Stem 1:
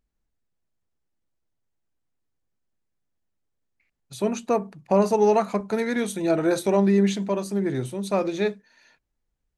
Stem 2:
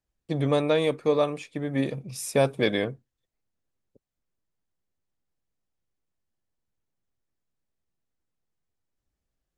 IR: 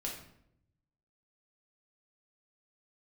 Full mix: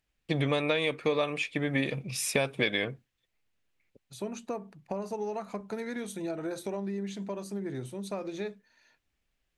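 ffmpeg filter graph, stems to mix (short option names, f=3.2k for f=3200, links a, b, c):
-filter_complex "[0:a]acompressor=threshold=-24dB:ratio=6,volume=2.5dB[a];[1:a]equalizer=f=2.5k:t=o:w=1.5:g=12,volume=0.5dB,asplit=2[b][c];[c]apad=whole_len=422476[d];[a][d]sidechaingate=range=-10dB:threshold=-46dB:ratio=16:detection=peak[e];[e][b]amix=inputs=2:normalize=0,acompressor=threshold=-24dB:ratio=6"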